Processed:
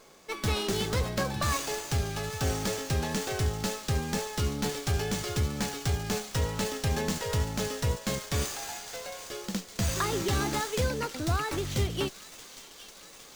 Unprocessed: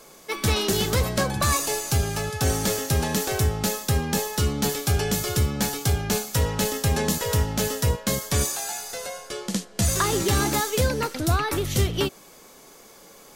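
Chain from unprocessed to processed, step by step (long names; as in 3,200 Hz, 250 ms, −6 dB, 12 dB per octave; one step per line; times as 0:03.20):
delay with a high-pass on its return 809 ms, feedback 71%, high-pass 3,300 Hz, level −10.5 dB
tape wow and flutter 22 cents
windowed peak hold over 3 samples
level −6 dB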